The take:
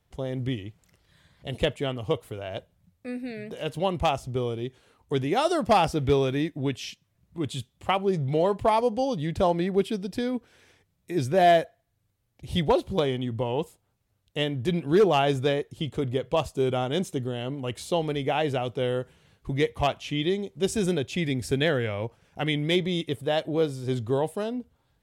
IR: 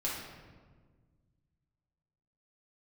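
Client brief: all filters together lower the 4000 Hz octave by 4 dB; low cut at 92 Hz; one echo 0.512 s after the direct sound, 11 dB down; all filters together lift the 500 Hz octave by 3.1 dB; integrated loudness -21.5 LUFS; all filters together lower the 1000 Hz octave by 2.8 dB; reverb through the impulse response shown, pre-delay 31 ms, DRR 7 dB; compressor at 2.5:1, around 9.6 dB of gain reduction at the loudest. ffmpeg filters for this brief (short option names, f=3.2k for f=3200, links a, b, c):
-filter_complex "[0:a]highpass=92,equalizer=f=500:t=o:g=6,equalizer=f=1k:t=o:g=-8,equalizer=f=4k:t=o:g=-5,acompressor=threshold=-26dB:ratio=2.5,aecho=1:1:512:0.282,asplit=2[a][b];[1:a]atrim=start_sample=2205,adelay=31[c];[b][c]afir=irnorm=-1:irlink=0,volume=-11.5dB[d];[a][d]amix=inputs=2:normalize=0,volume=8dB"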